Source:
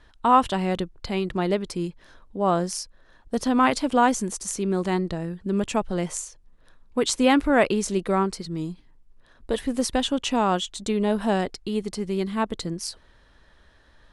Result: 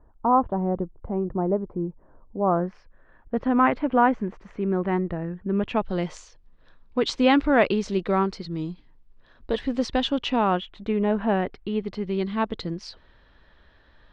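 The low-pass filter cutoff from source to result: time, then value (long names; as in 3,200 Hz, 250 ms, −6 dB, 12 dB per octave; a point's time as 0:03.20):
low-pass filter 24 dB per octave
0:02.37 1,000 Hz
0:02.77 2,200 Hz
0:05.50 2,200 Hz
0:05.90 4,700 Hz
0:10.16 4,700 Hz
0:10.68 2,600 Hz
0:11.41 2,600 Hz
0:12.27 4,300 Hz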